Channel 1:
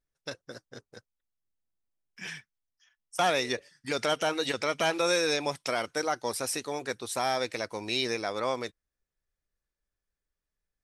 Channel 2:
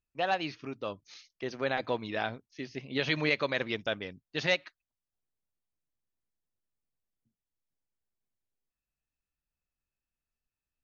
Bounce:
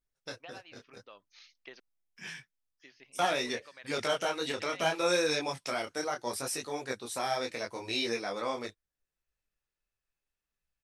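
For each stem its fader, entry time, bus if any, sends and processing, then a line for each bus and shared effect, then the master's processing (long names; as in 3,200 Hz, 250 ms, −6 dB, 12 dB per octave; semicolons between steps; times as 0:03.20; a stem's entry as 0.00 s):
+0.5 dB, 0.00 s, no send, micro pitch shift up and down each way 26 cents
+1.0 dB, 0.25 s, muted 0:01.80–0:02.82, no send, downward compressor 6 to 1, threshold −36 dBFS, peak gain reduction 13.5 dB; resonant band-pass 2,100 Hz, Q 0.54; automatic ducking −9 dB, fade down 0.60 s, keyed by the first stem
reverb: not used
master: no processing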